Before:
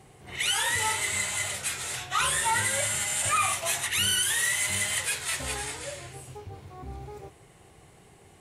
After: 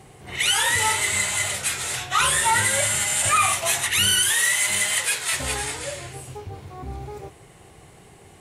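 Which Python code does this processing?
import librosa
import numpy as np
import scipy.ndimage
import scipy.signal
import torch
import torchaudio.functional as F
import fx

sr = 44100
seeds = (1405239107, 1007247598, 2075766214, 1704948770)

y = fx.highpass(x, sr, hz=280.0, slope=6, at=(4.29, 5.33))
y = y * librosa.db_to_amplitude(6.0)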